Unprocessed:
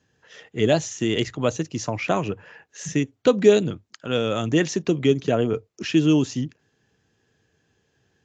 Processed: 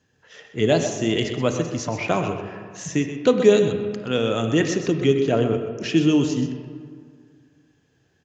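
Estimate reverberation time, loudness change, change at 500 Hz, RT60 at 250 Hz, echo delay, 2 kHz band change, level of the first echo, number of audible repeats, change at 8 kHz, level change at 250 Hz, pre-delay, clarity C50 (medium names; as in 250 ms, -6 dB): 2.1 s, +1.0 dB, +1.5 dB, 2.1 s, 127 ms, +1.0 dB, -10.5 dB, 1, no reading, +1.0 dB, 23 ms, 6.0 dB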